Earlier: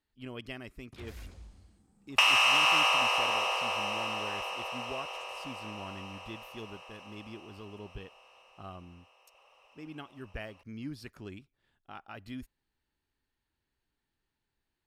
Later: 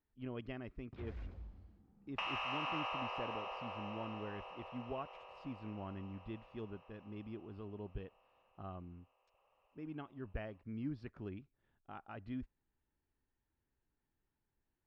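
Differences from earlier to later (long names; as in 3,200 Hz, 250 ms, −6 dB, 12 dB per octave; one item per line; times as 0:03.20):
second sound −8.5 dB
master: add head-to-tape spacing loss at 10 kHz 39 dB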